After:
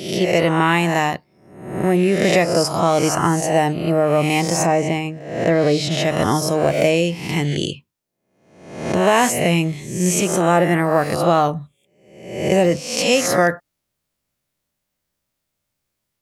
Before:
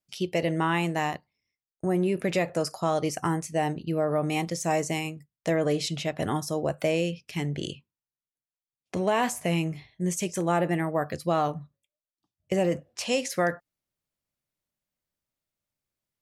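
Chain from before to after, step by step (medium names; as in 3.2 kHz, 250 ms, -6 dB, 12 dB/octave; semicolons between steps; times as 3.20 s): reverse spectral sustain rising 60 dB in 0.76 s; 4.65–5.90 s: low-pass 1.4 kHz -> 3 kHz 6 dB/octave; trim +8.5 dB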